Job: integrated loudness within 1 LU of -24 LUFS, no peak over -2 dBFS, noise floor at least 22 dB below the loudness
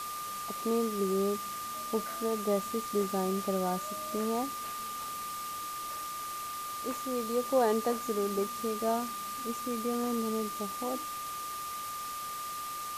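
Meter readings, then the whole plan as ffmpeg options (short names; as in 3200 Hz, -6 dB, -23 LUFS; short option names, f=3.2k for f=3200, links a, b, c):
steady tone 1200 Hz; tone level -37 dBFS; noise floor -39 dBFS; noise floor target -56 dBFS; loudness -33.5 LUFS; peak -15.5 dBFS; loudness target -24.0 LUFS
-> -af "bandreject=f=1.2k:w=30"
-af "afftdn=nr=17:nf=-39"
-af "volume=9.5dB"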